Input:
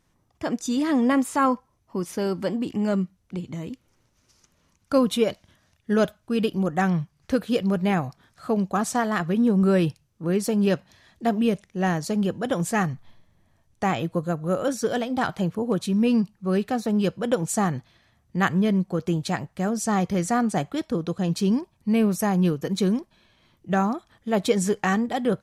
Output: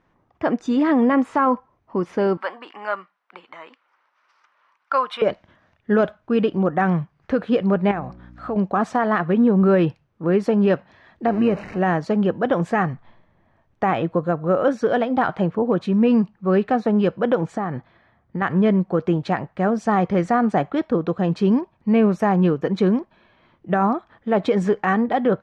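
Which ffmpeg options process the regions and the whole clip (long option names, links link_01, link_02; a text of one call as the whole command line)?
ffmpeg -i in.wav -filter_complex "[0:a]asettb=1/sr,asplit=3[link_01][link_02][link_03];[link_01]atrim=end=2.374[link_04];[link_02]atrim=start=2.37:end=5.22,asetpts=PTS-STARTPTS,afade=type=in:duration=0.004:curve=qsin,afade=type=out:start_time=2.846:duration=0.004:curve=qsin,highpass=frequency=1100:width_type=q:width=1.6,equalizer=frequency=6700:width=6:gain=-10[link_05];[link_03]atrim=start=5.216[link_06];[link_04][link_05]acrossfade=duration=0.004:curve1=hsin:curve2=qsin[link_07];[link_07][link_06]acrossfade=duration=0.004:curve1=qsin:curve2=hsin,asettb=1/sr,asplit=3[link_08][link_09][link_10];[link_08]atrim=end=7.914[link_11];[link_09]atrim=start=7.91:end=8.56,asetpts=PTS-STARTPTS,afade=type=in:duration=0.004:curve=qsin,afade=type=out:start_time=0.646:duration=0.004:curve=qsin,bandreject=frequency=183.7:width_type=h:width=4,bandreject=frequency=367.4:width_type=h:width=4,bandreject=frequency=551.1:width_type=h:width=4,acompressor=threshold=-31dB:ratio=3:attack=3.2:release=140:knee=1:detection=peak,aeval=exprs='val(0)+0.00631*(sin(2*PI*60*n/s)+sin(2*PI*2*60*n/s)/2+sin(2*PI*3*60*n/s)/3+sin(2*PI*4*60*n/s)/4+sin(2*PI*5*60*n/s)/5)':channel_layout=same[link_12];[link_10]atrim=start=8.556[link_13];[link_11][link_12]acrossfade=duration=0.004:curve1=hsin:curve2=qsin[link_14];[link_14][link_13]acrossfade=duration=0.004:curve1=qsin:curve2=hsin,asettb=1/sr,asplit=3[link_15][link_16][link_17];[link_15]atrim=end=11.264[link_18];[link_16]atrim=start=11.26:end=11.79,asetpts=PTS-STARTPTS,afade=type=in:duration=0.004:curve=qsin,afade=type=out:start_time=0.526:duration=0.004:curve=qsin,aeval=exprs='val(0)+0.5*0.0251*sgn(val(0))':channel_layout=same,tremolo=f=110:d=0.333,asuperstop=centerf=3400:order=8:qfactor=5.2[link_19];[link_17]atrim=start=11.786[link_20];[link_18][link_19]acrossfade=duration=0.004:curve1=hsin:curve2=qsin[link_21];[link_21][link_20]acrossfade=duration=0.004:curve1=qsin:curve2=hsin,asettb=1/sr,asplit=3[link_22][link_23][link_24];[link_22]atrim=end=17.474[link_25];[link_23]atrim=start=17.47:end=18.42,asetpts=PTS-STARTPTS,afade=type=in:duration=0.004:curve=qsin,afade=type=out:start_time=0.946:duration=0.004:curve=qsin,highshelf=frequency=5800:gain=-10.5,bandreject=frequency=2700:width=11,acompressor=threshold=-25dB:ratio=10:attack=3.2:release=140:knee=1:detection=peak[link_26];[link_24]atrim=start=18.416[link_27];[link_25][link_26]acrossfade=duration=0.004:curve1=hsin:curve2=qsin[link_28];[link_28][link_27]acrossfade=duration=0.004:curve1=qsin:curve2=hsin,lowpass=1800,lowshelf=frequency=200:gain=-11,alimiter=level_in=17.5dB:limit=-1dB:release=50:level=0:latency=1,volume=-8.5dB" out.wav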